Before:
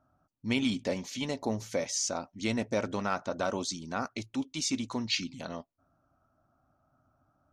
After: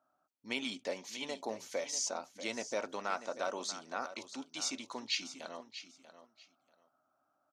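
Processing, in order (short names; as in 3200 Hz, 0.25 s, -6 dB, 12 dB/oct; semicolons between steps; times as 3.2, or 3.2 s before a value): HPF 420 Hz 12 dB/oct; on a send: feedback echo 0.639 s, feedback 20%, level -12.5 dB; on the sum: gain -4 dB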